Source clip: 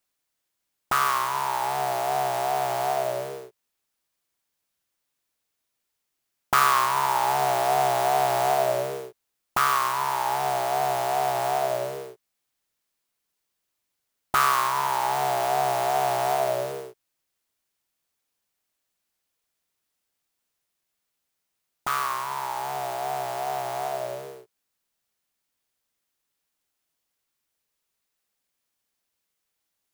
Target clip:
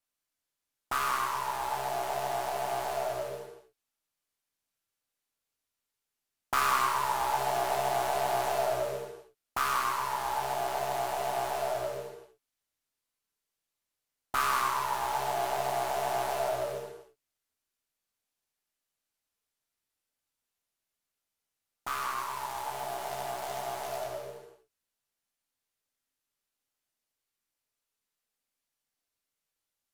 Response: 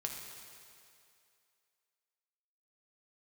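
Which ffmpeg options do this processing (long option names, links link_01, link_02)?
-filter_complex "[0:a]aeval=exprs='if(lt(val(0),0),0.708*val(0),val(0))':channel_layout=same,asettb=1/sr,asplit=3[link_01][link_02][link_03];[link_01]atrim=end=22.174[link_04];[link_02]atrim=start=22.17:end=24.05,asetpts=PTS-STARTPTS,afade=type=in:duration=0.004:curve=qsin,afade=type=out:start_time=1.876:duration=0.004:curve=qsin,acrusher=bits=2:mode=log:mix=0:aa=0.000001[link_05];[link_03]atrim=start=24.046[link_06];[link_04][link_05]acrossfade=duration=0.004:curve1=hsin:curve2=qsin[link_07];[link_07][link_06]acrossfade=duration=0.004:curve1=qsin:curve2=hsin[link_08];[1:a]atrim=start_sample=2205,afade=type=out:start_time=0.19:duration=0.01,atrim=end_sample=8820,asetrate=28224,aresample=44100[link_09];[link_08][link_09]afir=irnorm=-1:irlink=0,volume=-7dB"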